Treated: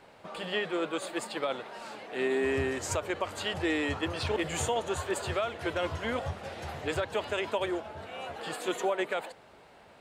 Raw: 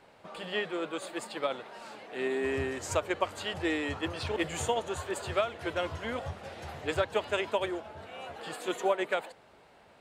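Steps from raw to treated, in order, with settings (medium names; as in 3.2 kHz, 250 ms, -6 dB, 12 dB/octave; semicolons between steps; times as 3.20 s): peak limiter -23 dBFS, peak gain reduction 8 dB; trim +3 dB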